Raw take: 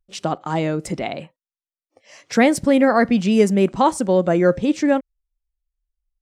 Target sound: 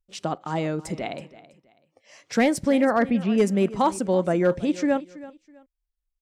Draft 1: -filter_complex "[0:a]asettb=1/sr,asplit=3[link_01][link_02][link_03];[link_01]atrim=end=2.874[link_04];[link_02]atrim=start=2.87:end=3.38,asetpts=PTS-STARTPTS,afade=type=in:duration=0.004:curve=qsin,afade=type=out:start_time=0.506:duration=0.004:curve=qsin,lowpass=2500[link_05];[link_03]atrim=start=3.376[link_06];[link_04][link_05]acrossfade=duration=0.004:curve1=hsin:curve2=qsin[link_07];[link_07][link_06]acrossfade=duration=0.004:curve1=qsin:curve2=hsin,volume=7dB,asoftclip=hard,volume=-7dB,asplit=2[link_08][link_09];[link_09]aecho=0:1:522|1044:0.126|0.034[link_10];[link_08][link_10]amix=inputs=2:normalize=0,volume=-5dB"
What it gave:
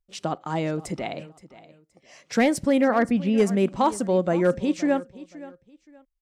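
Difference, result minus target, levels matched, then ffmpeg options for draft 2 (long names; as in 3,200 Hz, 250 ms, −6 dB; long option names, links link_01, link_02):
echo 195 ms late
-filter_complex "[0:a]asettb=1/sr,asplit=3[link_01][link_02][link_03];[link_01]atrim=end=2.874[link_04];[link_02]atrim=start=2.87:end=3.38,asetpts=PTS-STARTPTS,afade=type=in:duration=0.004:curve=qsin,afade=type=out:start_time=0.506:duration=0.004:curve=qsin,lowpass=2500[link_05];[link_03]atrim=start=3.376[link_06];[link_04][link_05]acrossfade=duration=0.004:curve1=hsin:curve2=qsin[link_07];[link_07][link_06]acrossfade=duration=0.004:curve1=qsin:curve2=hsin,volume=7dB,asoftclip=hard,volume=-7dB,asplit=2[link_08][link_09];[link_09]aecho=0:1:327|654:0.126|0.034[link_10];[link_08][link_10]amix=inputs=2:normalize=0,volume=-5dB"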